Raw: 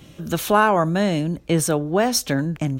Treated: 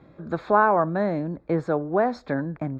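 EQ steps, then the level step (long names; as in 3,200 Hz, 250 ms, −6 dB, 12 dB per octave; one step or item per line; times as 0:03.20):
moving average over 15 samples
high-frequency loss of the air 180 metres
low-shelf EQ 290 Hz −12 dB
+2.0 dB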